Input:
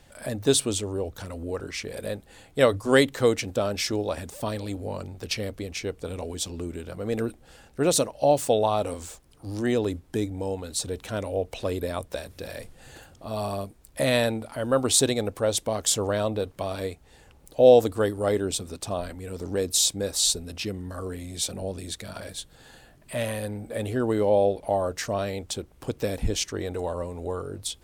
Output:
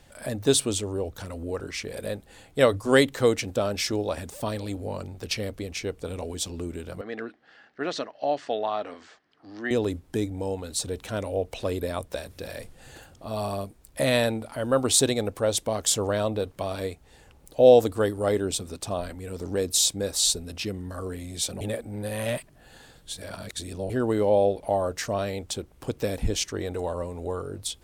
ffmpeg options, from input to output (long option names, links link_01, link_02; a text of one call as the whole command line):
ffmpeg -i in.wav -filter_complex "[0:a]asettb=1/sr,asplit=3[link_01][link_02][link_03];[link_01]atrim=end=7.014[link_04];[link_02]atrim=start=7.01:end=9.71,asetpts=PTS-STARTPTS,afade=type=in:duration=0.004:curve=qsin,afade=type=out:start_time=2.696:duration=0.004:curve=qsin,highpass=360,equalizer=frequency=370:width_type=q:width=4:gain=-4,equalizer=frequency=520:width_type=q:width=4:gain=-10,equalizer=frequency=910:width_type=q:width=4:gain=-6,equalizer=frequency=1800:width_type=q:width=4:gain=7,equalizer=frequency=2500:width_type=q:width=4:gain=-5,equalizer=frequency=3700:width_type=q:width=4:gain=-5,lowpass=frequency=4200:width=0.5412,lowpass=frequency=4200:width=1.3066[link_05];[link_03]atrim=start=9.706[link_06];[link_04][link_05]acrossfade=duration=0.004:curve1=hsin:curve2=qsin[link_07];[link_07][link_06]acrossfade=duration=0.004:curve1=qsin:curve2=hsin,asplit=3[link_08][link_09][link_10];[link_08]atrim=end=21.612[link_11];[link_09]atrim=start=21.608:end=23.902,asetpts=PTS-STARTPTS,areverse[link_12];[link_10]atrim=start=23.898[link_13];[link_11][link_12]acrossfade=duration=0.004:curve1=hsin:curve2=hsin[link_14];[link_14][link_13]acrossfade=duration=0.004:curve1=hsin:curve2=hsin" out.wav